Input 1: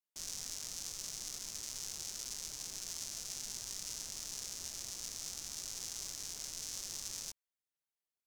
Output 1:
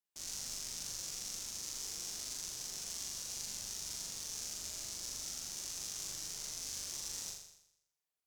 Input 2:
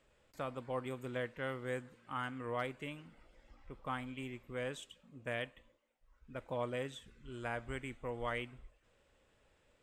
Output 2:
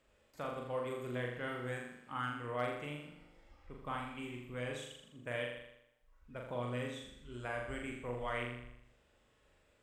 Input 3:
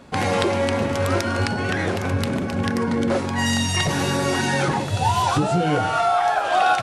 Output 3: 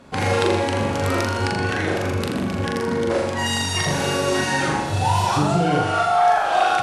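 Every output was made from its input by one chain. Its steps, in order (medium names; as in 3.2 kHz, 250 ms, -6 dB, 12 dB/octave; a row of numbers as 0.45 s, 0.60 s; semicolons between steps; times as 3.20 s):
Chebyshev shaper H 6 -42 dB, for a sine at -6.5 dBFS; flutter echo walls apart 7 m, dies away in 0.78 s; trim -2 dB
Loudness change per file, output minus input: +1.0 LU, +0.5 LU, +0.5 LU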